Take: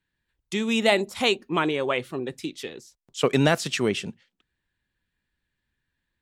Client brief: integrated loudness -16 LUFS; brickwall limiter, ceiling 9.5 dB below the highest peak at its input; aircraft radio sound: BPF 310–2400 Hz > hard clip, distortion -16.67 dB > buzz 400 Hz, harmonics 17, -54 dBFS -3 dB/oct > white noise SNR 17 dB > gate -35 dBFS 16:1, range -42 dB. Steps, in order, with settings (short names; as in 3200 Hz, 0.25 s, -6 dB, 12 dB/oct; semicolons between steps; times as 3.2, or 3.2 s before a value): limiter -16 dBFS; BPF 310–2400 Hz; hard clip -22.5 dBFS; buzz 400 Hz, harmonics 17, -54 dBFS -3 dB/oct; white noise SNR 17 dB; gate -35 dBFS 16:1, range -42 dB; gain +16 dB